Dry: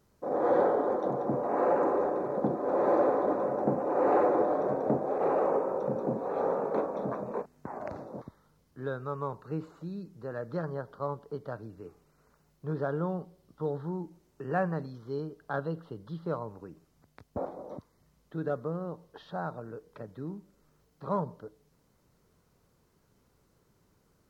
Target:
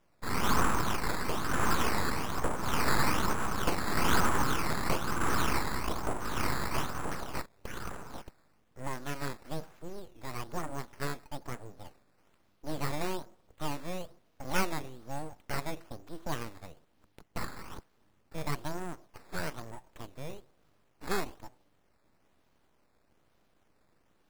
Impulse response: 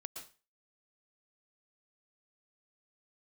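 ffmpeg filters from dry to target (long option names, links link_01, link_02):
-af "equalizer=frequency=760:width_type=o:width=0.21:gain=6,acrusher=samples=10:mix=1:aa=0.000001:lfo=1:lforange=10:lforate=1.1,aeval=exprs='abs(val(0))':channel_layout=same"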